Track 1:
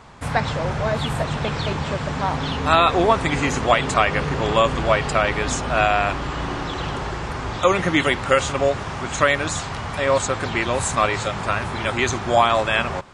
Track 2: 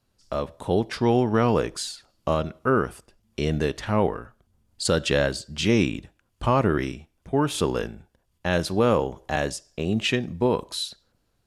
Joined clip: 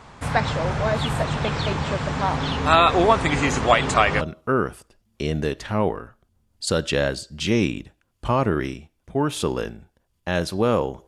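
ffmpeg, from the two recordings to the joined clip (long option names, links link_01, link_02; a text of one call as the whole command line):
ffmpeg -i cue0.wav -i cue1.wav -filter_complex "[0:a]apad=whole_dur=11.07,atrim=end=11.07,atrim=end=4.212[link_01];[1:a]atrim=start=2.388:end=9.25[link_02];[link_01][link_02]acrossfade=duration=0.004:curve1=hsin:curve2=hsin" out.wav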